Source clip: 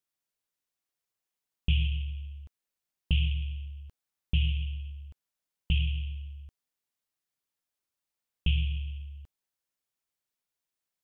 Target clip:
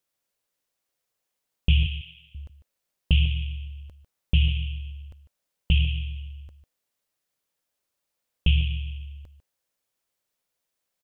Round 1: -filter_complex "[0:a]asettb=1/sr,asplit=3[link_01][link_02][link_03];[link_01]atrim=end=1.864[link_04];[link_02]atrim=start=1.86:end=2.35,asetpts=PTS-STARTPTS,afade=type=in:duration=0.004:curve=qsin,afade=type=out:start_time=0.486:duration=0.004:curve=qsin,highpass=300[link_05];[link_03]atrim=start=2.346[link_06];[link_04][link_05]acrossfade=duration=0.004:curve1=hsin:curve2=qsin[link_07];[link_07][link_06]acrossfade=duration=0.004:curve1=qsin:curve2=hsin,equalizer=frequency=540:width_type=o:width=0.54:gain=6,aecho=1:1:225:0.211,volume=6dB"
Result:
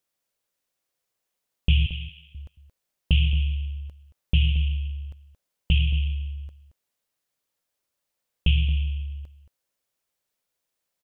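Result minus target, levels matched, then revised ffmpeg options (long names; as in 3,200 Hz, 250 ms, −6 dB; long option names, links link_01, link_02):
echo 76 ms late
-filter_complex "[0:a]asettb=1/sr,asplit=3[link_01][link_02][link_03];[link_01]atrim=end=1.864[link_04];[link_02]atrim=start=1.86:end=2.35,asetpts=PTS-STARTPTS,afade=type=in:duration=0.004:curve=qsin,afade=type=out:start_time=0.486:duration=0.004:curve=qsin,highpass=300[link_05];[link_03]atrim=start=2.346[link_06];[link_04][link_05]acrossfade=duration=0.004:curve1=hsin:curve2=qsin[link_07];[link_07][link_06]acrossfade=duration=0.004:curve1=qsin:curve2=hsin,equalizer=frequency=540:width_type=o:width=0.54:gain=6,aecho=1:1:149:0.211,volume=6dB"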